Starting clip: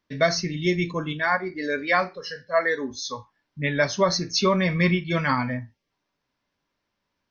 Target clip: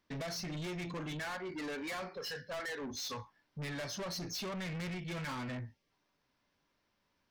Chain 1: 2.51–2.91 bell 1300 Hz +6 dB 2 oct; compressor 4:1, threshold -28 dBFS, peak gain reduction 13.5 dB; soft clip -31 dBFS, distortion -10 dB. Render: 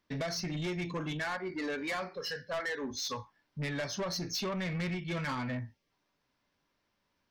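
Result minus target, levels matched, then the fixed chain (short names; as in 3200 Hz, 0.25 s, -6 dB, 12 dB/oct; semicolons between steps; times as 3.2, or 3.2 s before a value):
soft clip: distortion -4 dB
2.51–2.91 bell 1300 Hz +6 dB 2 oct; compressor 4:1, threshold -28 dBFS, peak gain reduction 13.5 dB; soft clip -38 dBFS, distortion -5 dB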